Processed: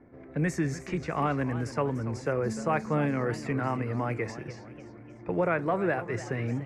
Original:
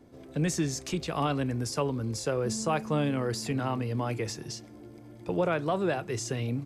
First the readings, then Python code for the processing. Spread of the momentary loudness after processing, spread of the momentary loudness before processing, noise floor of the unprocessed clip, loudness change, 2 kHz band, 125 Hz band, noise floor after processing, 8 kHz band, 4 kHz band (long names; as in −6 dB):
13 LU, 10 LU, −49 dBFS, +0.5 dB, +3.5 dB, 0.0 dB, −48 dBFS, −10.5 dB, −11.0 dB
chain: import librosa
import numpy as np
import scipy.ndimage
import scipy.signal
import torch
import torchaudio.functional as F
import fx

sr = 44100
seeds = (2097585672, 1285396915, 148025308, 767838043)

y = fx.env_lowpass(x, sr, base_hz=2500.0, full_db=-24.5)
y = fx.high_shelf_res(y, sr, hz=2600.0, db=-8.0, q=3.0)
y = fx.echo_warbled(y, sr, ms=293, feedback_pct=47, rate_hz=2.8, cents=185, wet_db=-14.0)